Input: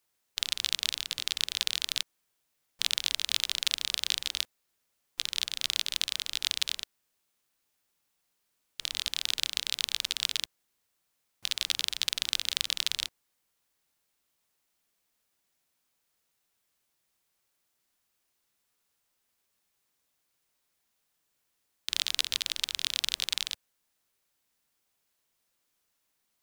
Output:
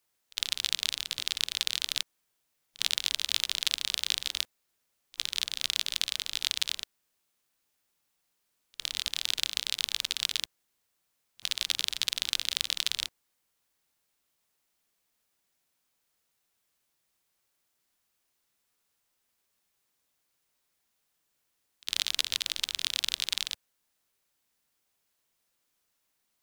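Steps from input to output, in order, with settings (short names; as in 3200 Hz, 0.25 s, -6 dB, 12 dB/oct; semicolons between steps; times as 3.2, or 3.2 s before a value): pre-echo 57 ms -22 dB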